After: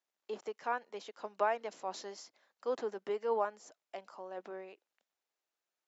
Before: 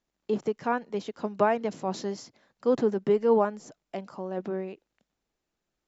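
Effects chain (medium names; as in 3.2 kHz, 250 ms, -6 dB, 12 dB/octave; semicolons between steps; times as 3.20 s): high-pass 590 Hz 12 dB/octave; trim -5.5 dB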